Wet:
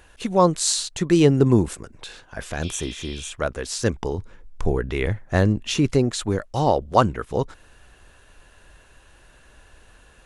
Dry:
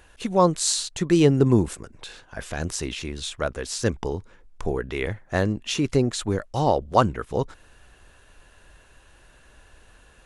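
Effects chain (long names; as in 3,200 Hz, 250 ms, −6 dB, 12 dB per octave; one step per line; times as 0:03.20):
0:02.65–0:03.28: healed spectral selection 2,100–5,600 Hz after
0:04.18–0:05.92: low-shelf EQ 190 Hz +7 dB
level +1.5 dB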